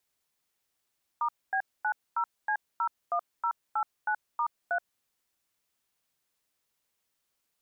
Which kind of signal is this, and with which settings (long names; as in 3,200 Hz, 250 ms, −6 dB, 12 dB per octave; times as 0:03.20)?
touch tones "*B90C01089*3", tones 76 ms, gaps 242 ms, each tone −28 dBFS